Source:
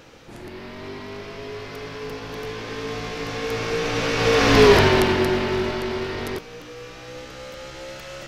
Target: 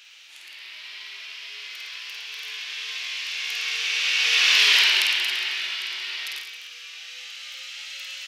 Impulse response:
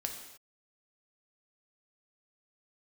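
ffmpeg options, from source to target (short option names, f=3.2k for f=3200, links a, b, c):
-af "highpass=f=2.8k:t=q:w=2.1,aecho=1:1:50|110|182|268.4|372.1:0.631|0.398|0.251|0.158|0.1"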